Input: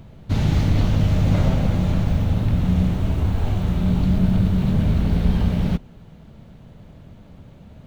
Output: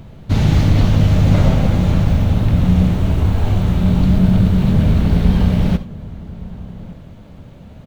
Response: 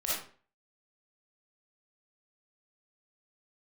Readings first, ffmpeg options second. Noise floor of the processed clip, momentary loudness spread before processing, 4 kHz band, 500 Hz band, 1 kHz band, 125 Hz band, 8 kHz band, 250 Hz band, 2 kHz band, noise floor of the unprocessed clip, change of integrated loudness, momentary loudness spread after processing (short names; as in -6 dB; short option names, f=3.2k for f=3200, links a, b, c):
-39 dBFS, 4 LU, +5.5 dB, +5.5 dB, +5.5 dB, +5.5 dB, n/a, +5.5 dB, +5.5 dB, -45 dBFS, +5.5 dB, 19 LU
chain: -filter_complex "[0:a]asplit=2[a][b];[b]adelay=1166,volume=-18dB,highshelf=f=4k:g=-26.2[c];[a][c]amix=inputs=2:normalize=0,asplit=2[d][e];[1:a]atrim=start_sample=2205,atrim=end_sample=3528,asetrate=37044,aresample=44100[f];[e][f]afir=irnorm=-1:irlink=0,volume=-18dB[g];[d][g]amix=inputs=2:normalize=0,volume=4.5dB"